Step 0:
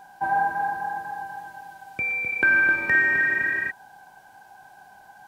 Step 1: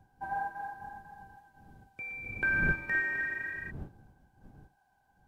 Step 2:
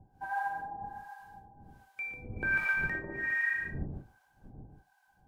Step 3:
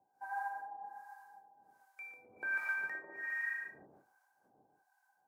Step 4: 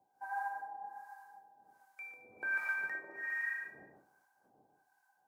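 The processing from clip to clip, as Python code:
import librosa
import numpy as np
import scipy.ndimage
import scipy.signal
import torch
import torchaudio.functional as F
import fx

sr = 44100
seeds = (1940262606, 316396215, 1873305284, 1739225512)

y1 = fx.dmg_wind(x, sr, seeds[0], corner_hz=170.0, level_db=-34.0)
y1 = fx.upward_expand(y1, sr, threshold_db=-42.0, expansion=1.5)
y1 = y1 * 10.0 ** (-9.0 / 20.0)
y2 = y1 + 10.0 ** (-3.5 / 20.0) * np.pad(y1, (int(147 * sr / 1000.0), 0))[:len(y1)]
y2 = fx.harmonic_tremolo(y2, sr, hz=1.3, depth_pct=100, crossover_hz=810.0)
y2 = y2 * 10.0 ** (5.0 / 20.0)
y3 = scipy.signal.sosfilt(scipy.signal.butter(2, 680.0, 'highpass', fs=sr, output='sos'), y2)
y3 = fx.peak_eq(y3, sr, hz=3100.0, db=-11.5, octaves=1.1)
y3 = y3 * 10.0 ** (-3.0 / 20.0)
y4 = y3 + 10.0 ** (-19.0 / 20.0) * np.pad(y3, (int(218 * sr / 1000.0), 0))[:len(y3)]
y4 = y4 * 10.0 ** (1.0 / 20.0)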